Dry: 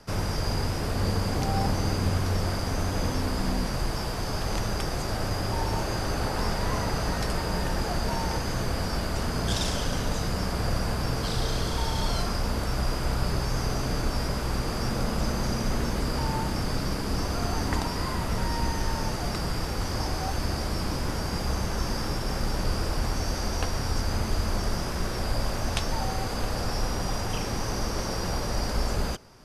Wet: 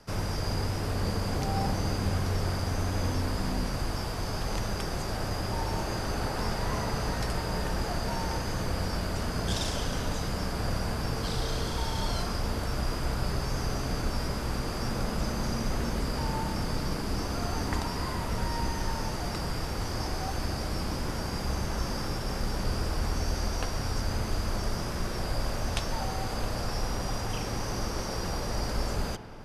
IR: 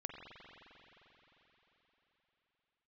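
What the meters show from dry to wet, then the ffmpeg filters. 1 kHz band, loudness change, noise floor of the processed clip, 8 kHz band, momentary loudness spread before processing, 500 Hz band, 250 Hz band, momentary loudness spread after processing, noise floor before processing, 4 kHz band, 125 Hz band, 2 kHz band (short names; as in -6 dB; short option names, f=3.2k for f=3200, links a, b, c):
-2.5 dB, -3.0 dB, -33 dBFS, -3.0 dB, 3 LU, -2.5 dB, -3.0 dB, 3 LU, -31 dBFS, -3.0 dB, -2.5 dB, -2.5 dB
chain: -filter_complex "[0:a]asplit=2[a][b];[1:a]atrim=start_sample=2205[c];[b][c]afir=irnorm=-1:irlink=0,volume=-2dB[d];[a][d]amix=inputs=2:normalize=0,volume=-6.5dB"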